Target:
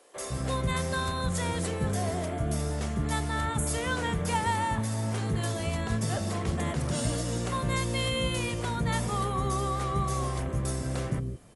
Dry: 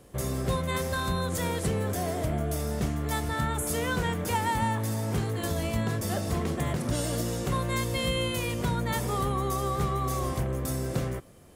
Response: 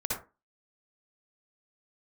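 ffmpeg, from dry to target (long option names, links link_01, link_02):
-filter_complex "[0:a]acrossover=split=380[link_01][link_02];[link_01]adelay=160[link_03];[link_03][link_02]amix=inputs=2:normalize=0" -ar 48000 -c:a ac3 -b:a 64k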